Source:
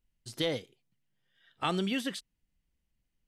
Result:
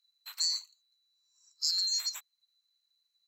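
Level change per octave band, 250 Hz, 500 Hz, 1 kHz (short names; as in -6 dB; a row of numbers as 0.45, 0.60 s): under -40 dB, under -40 dB, under -20 dB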